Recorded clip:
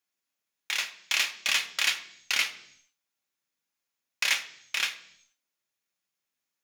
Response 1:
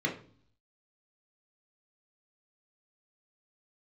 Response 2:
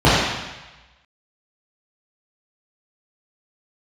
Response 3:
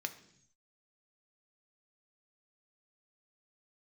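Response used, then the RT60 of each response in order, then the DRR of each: 3; 0.50, 1.1, 0.65 s; -0.5, -11.0, 7.0 dB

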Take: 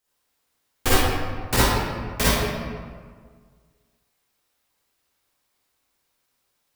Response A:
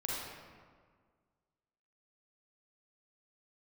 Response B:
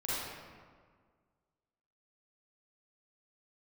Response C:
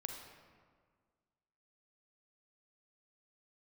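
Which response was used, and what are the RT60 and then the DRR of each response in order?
B; 1.7, 1.7, 1.7 s; -5.0, -10.0, 3.0 dB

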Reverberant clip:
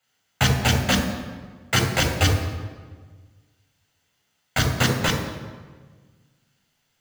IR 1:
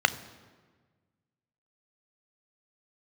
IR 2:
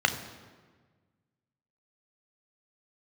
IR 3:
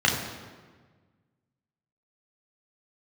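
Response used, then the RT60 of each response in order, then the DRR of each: 3; 1.5, 1.5, 1.5 s; 12.5, 6.5, -2.0 dB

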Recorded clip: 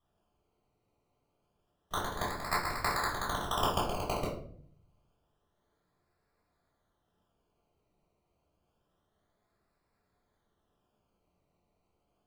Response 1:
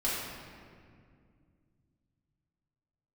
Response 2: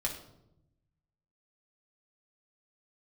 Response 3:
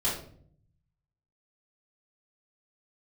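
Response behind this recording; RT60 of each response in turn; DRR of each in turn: 3; 2.2, 0.85, 0.55 s; -9.5, -1.5, -10.0 dB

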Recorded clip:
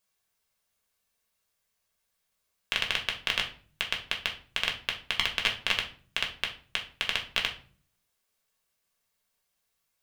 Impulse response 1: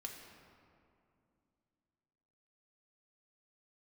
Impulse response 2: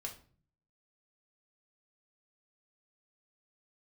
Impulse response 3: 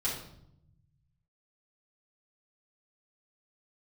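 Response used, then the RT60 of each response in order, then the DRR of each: 2; 2.5, 0.45, 0.75 s; 0.0, 0.5, -8.5 dB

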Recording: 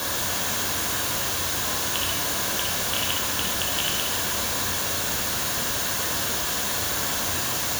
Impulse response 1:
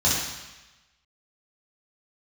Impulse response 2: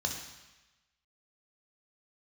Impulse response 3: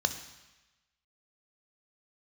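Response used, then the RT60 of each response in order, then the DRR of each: 2; 1.1, 1.1, 1.1 s; -8.0, 1.5, 8.0 dB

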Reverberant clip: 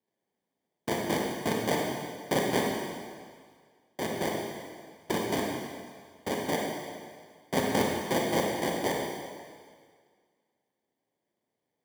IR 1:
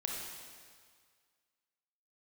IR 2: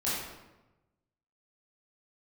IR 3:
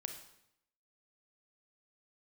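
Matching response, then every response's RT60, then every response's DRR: 1; 1.9, 1.0, 0.75 s; -1.5, -10.0, 5.0 dB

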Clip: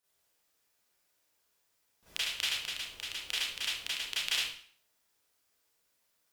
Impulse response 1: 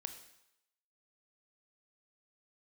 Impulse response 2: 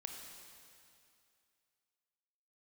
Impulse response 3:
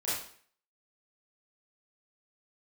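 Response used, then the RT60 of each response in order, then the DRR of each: 3; 0.85, 2.5, 0.55 s; 7.5, 2.5, -11.0 dB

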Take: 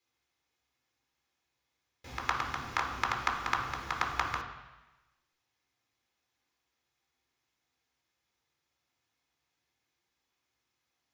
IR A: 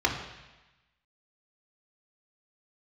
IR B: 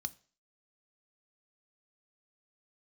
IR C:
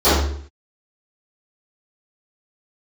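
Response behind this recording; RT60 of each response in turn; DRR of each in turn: A; 1.1, 0.40, 0.55 s; -0.5, 12.0, -20.5 dB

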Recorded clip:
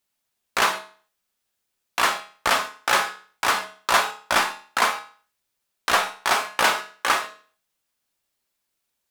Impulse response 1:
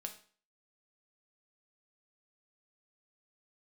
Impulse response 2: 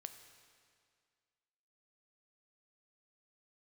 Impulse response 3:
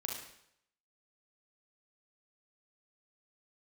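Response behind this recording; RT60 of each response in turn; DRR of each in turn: 1; 0.45, 2.1, 0.70 s; 4.0, 7.5, -1.0 dB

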